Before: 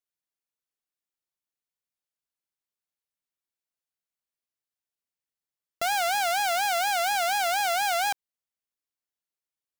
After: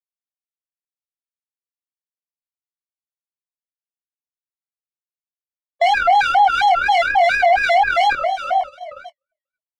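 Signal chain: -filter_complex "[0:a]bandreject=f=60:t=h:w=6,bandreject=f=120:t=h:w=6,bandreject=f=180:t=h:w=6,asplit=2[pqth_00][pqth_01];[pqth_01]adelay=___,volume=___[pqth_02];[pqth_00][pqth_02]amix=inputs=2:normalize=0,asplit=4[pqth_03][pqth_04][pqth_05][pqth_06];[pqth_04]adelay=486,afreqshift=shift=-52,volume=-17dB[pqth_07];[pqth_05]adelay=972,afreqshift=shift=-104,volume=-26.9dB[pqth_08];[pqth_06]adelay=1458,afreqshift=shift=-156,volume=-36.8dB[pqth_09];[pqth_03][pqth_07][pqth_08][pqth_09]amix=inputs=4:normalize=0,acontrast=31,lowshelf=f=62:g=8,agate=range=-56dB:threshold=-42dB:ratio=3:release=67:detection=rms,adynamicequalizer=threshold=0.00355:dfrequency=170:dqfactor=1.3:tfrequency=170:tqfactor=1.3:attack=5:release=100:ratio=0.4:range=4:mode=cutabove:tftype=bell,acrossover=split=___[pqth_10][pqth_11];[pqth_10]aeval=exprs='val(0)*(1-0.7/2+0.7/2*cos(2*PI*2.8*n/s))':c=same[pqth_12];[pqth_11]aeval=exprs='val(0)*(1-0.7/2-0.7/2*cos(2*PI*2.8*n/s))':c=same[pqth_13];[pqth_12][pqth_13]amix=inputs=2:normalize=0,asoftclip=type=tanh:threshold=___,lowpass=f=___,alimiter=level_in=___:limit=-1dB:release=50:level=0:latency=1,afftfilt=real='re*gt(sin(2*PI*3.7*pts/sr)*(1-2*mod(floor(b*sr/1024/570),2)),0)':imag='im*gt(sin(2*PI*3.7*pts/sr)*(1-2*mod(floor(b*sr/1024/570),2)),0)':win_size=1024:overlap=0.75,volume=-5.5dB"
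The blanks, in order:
23, -5.5dB, 2100, -17.5dB, 2.1k, 28dB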